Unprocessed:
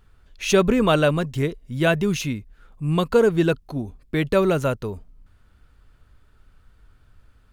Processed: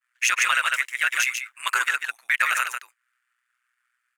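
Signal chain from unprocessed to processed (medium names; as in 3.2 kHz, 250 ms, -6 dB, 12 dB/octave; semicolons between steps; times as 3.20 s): high-pass 1.4 kHz 24 dB/octave; expander -59 dBFS; graphic EQ 2/4/8 kHz +10/-9/+7 dB; tempo 1.8×; in parallel at -11 dB: saturation -22.5 dBFS, distortion -9 dB; on the sum: ring modulator 61 Hz; on a send: delay 145 ms -8 dB; on the sum: loudness maximiser +17.5 dB; trim -8.5 dB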